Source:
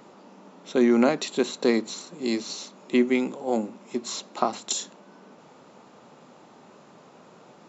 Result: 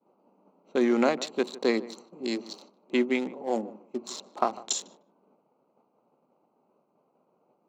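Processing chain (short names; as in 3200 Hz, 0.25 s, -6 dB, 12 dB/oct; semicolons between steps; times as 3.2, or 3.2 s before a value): Wiener smoothing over 25 samples; HPF 380 Hz 6 dB/oct; expander -46 dBFS; tape echo 0.152 s, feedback 20%, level -16.5 dB, low-pass 1200 Hz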